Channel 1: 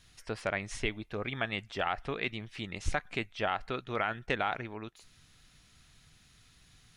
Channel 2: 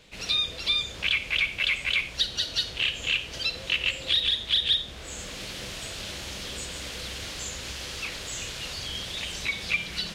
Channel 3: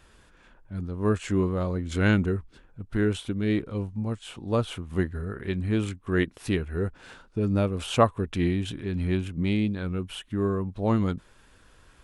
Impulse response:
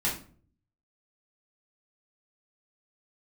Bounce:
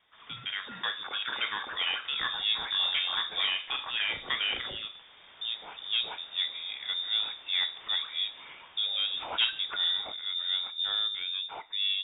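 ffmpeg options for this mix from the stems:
-filter_complex "[0:a]dynaudnorm=f=400:g=3:m=3.35,volume=0.398,asplit=2[s0][s1];[s1]volume=0.237[s2];[1:a]lowpass=f=3000:p=1,volume=0.251[s3];[2:a]adelay=1400,volume=0.891,asplit=3[s4][s5][s6];[s4]atrim=end=3.45,asetpts=PTS-STARTPTS,afade=t=out:st=3.446:d=0.004:c=hsin[s7];[s5]atrim=start=3.45:end=5.41,asetpts=PTS-STARTPTS,volume=0[s8];[s6]atrim=start=5.41,asetpts=PTS-STARTPTS,afade=t=in:d=0.004:c=hsin[s9];[s7][s8][s9]concat=n=3:v=0:a=1,asplit=2[s10][s11];[s11]volume=0.106[s12];[3:a]atrim=start_sample=2205[s13];[s2][s12]amix=inputs=2:normalize=0[s14];[s14][s13]afir=irnorm=-1:irlink=0[s15];[s0][s3][s10][s15]amix=inputs=4:normalize=0,highpass=200,aeval=exprs='(tanh(11.2*val(0)+0.1)-tanh(0.1))/11.2':c=same,lowpass=f=3200:t=q:w=0.5098,lowpass=f=3200:t=q:w=0.6013,lowpass=f=3200:t=q:w=0.9,lowpass=f=3200:t=q:w=2.563,afreqshift=-3800"

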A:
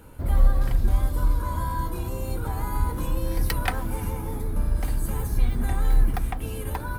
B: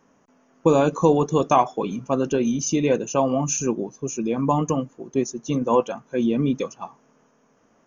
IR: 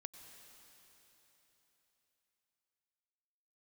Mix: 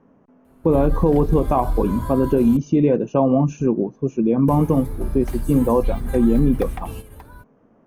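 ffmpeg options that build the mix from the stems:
-filter_complex "[0:a]adelay=450,volume=0.891,asplit=3[s0][s1][s2];[s0]atrim=end=2.57,asetpts=PTS-STARTPTS,afade=t=out:st=2.566:d=0.004:c=hsin[s3];[s1]atrim=start=2.57:end=4.48,asetpts=PTS-STARTPTS,volume=0[s4];[s2]atrim=start=4.48,asetpts=PTS-STARTPTS,afade=t=in:d=0.004:c=hsin[s5];[s3][s4][s5]concat=n=3:v=0:a=1[s6];[1:a]lowpass=2800,tiltshelf=f=910:g=7.5,volume=1.12,asplit=2[s7][s8];[s8]apad=whole_len=327959[s9];[s6][s9]sidechaingate=range=0.282:threshold=0.00501:ratio=16:detection=peak[s10];[s10][s7]amix=inputs=2:normalize=0,alimiter=limit=0.422:level=0:latency=1:release=64"

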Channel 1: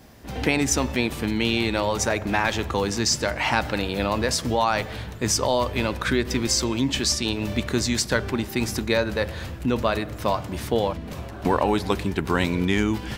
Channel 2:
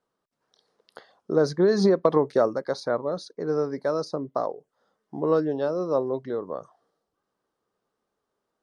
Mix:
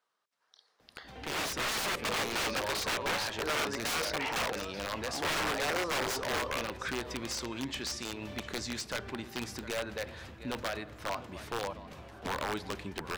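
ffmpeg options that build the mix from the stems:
-filter_complex "[0:a]adelay=800,volume=0.168,asplit=2[s0][s1];[s1]volume=0.15[s2];[1:a]tiltshelf=f=700:g=-8.5,bandreject=f=81.87:t=h:w=4,bandreject=f=163.74:t=h:w=4,bandreject=f=245.61:t=h:w=4,bandreject=f=327.48:t=h:w=4,bandreject=f=409.35:t=h:w=4,bandreject=f=491.22:t=h:w=4,bandreject=f=573.09:t=h:w=4,asoftclip=type=tanh:threshold=0.211,volume=0.631,asplit=2[s3][s4];[s4]volume=0.133[s5];[s2][s5]amix=inputs=2:normalize=0,aecho=0:1:706:1[s6];[s0][s3][s6]amix=inputs=3:normalize=0,aeval=exprs='(mod(26.6*val(0)+1,2)-1)/26.6':c=same,asplit=2[s7][s8];[s8]highpass=f=720:p=1,volume=1.78,asoftclip=type=tanh:threshold=0.0398[s9];[s7][s9]amix=inputs=2:normalize=0,lowpass=f=3800:p=1,volume=0.501,dynaudnorm=f=420:g=7:m=1.68"

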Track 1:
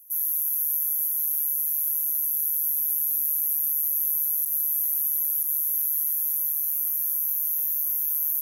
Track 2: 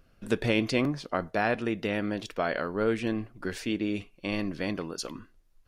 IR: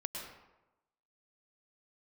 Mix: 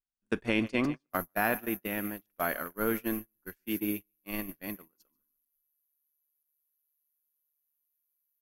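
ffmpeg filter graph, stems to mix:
-filter_complex "[0:a]adelay=1000,volume=0.2[s0];[1:a]equalizer=f=125:t=o:w=1:g=-8,equalizer=f=500:t=o:w=1:g=-7,equalizer=f=4000:t=o:w=1:g=-8,volume=1.19,asplit=2[s1][s2];[s2]volume=0.2,aecho=0:1:146|292|438|584:1|0.29|0.0841|0.0244[s3];[s0][s1][s3]amix=inputs=3:normalize=0,agate=range=0.00891:threshold=0.0316:ratio=16:detection=peak"

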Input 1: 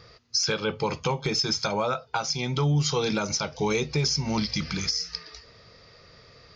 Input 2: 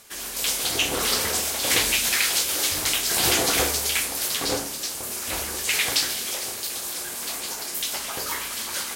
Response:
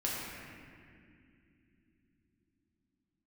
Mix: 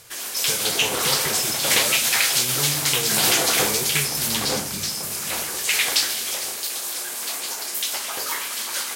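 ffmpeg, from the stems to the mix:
-filter_complex "[0:a]flanger=delay=9.7:depth=3.4:regen=-86:speed=0.39:shape=triangular,volume=0.708,asplit=2[s0][s1];[s1]volume=0.282[s2];[1:a]highpass=f=430:p=1,volume=1.33[s3];[2:a]atrim=start_sample=2205[s4];[s2][s4]afir=irnorm=-1:irlink=0[s5];[s0][s3][s5]amix=inputs=3:normalize=0"

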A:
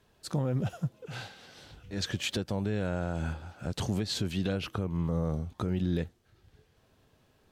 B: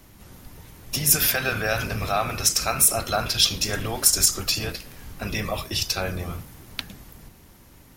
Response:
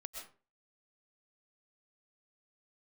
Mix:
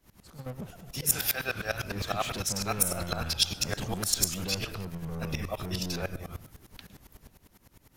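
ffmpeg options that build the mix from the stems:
-filter_complex "[0:a]asoftclip=type=tanh:threshold=0.0224,volume=0.841,asplit=2[s0][s1];[s1]volume=0.422[s2];[1:a]aeval=exprs='val(0)*pow(10,-23*if(lt(mod(-9.9*n/s,1),2*abs(-9.9)/1000),1-mod(-9.9*n/s,1)/(2*abs(-9.9)/1000),(mod(-9.9*n/s,1)-2*abs(-9.9)/1000)/(1-2*abs(-9.9)/1000))/20)':c=same,volume=0.794,asplit=3[s3][s4][s5];[s4]volume=0.211[s6];[s5]apad=whole_len=331342[s7];[s0][s7]sidechaingate=range=0.0224:threshold=0.00282:ratio=16:detection=peak[s8];[2:a]atrim=start_sample=2205[s9];[s2][s6]amix=inputs=2:normalize=0[s10];[s10][s9]afir=irnorm=-1:irlink=0[s11];[s8][s3][s11]amix=inputs=3:normalize=0"

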